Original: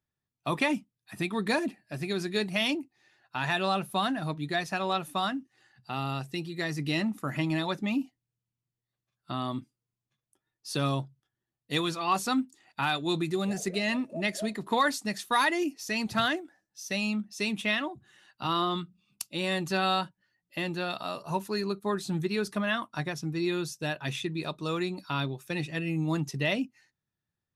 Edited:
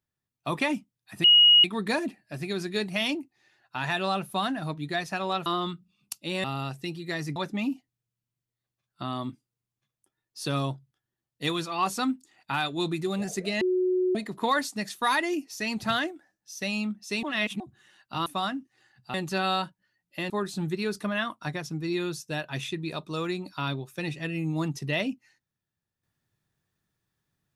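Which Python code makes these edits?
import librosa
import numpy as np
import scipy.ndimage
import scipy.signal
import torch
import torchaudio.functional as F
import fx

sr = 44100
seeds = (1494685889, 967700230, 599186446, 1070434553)

y = fx.edit(x, sr, fx.insert_tone(at_s=1.24, length_s=0.4, hz=2890.0, db=-13.0),
    fx.swap(start_s=5.06, length_s=0.88, other_s=18.55, other_length_s=0.98),
    fx.cut(start_s=6.86, length_s=0.79),
    fx.bleep(start_s=13.9, length_s=0.54, hz=367.0, db=-21.5),
    fx.reverse_span(start_s=17.52, length_s=0.37),
    fx.cut(start_s=20.69, length_s=1.13), tone=tone)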